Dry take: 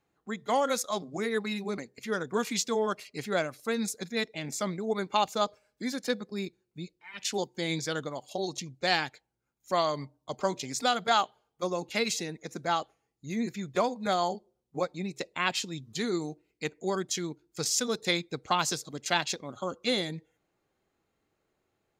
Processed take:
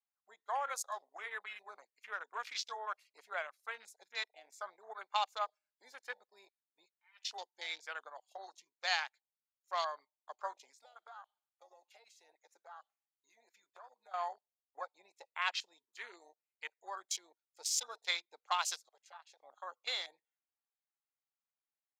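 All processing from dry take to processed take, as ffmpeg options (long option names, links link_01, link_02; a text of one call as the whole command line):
ffmpeg -i in.wav -filter_complex "[0:a]asettb=1/sr,asplit=3[link_01][link_02][link_03];[link_01]atrim=end=10.704[link_04];[link_02]atrim=start=10.7:end=14.14,asetpts=PTS-STARTPTS,afade=type=in:duration=0.004:curve=qsin,afade=type=out:start_time=3.436:duration=0.004:curve=qsin,lowshelf=frequency=160:gain=-10.5,acompressor=threshold=-38dB:ratio=12:attack=3.2:release=140:knee=1:detection=peak[link_05];[link_03]atrim=start=14.136[link_06];[link_04][link_05]acrossfade=duration=0.004:curve1=hsin:curve2=qsin[link_07];[link_07][link_06]acrossfade=duration=0.004:curve1=qsin:curve2=hsin,asettb=1/sr,asplit=3[link_08][link_09][link_10];[link_08]atrim=end=18.884[link_11];[link_09]atrim=start=18.88:end=19.4,asetpts=PTS-STARTPTS,afade=type=in:duration=0.004:curve=qsin,afade=type=out:start_time=0.516:duration=0.004:curve=qsin,highshelf=frequency=9400:gain=-7,acompressor=threshold=-37dB:ratio=5:attack=3.2:release=140:knee=1:detection=peak,highpass=440[link_12];[link_10]atrim=start=19.396[link_13];[link_11][link_12]acrossfade=duration=0.004:curve1=hsin:curve2=qsin[link_14];[link_14][link_13]acrossfade=duration=0.004:curve1=qsin:curve2=hsin,afwtdn=0.0126,highpass=frequency=780:width=0.5412,highpass=frequency=780:width=1.3066,volume=-5.5dB" out.wav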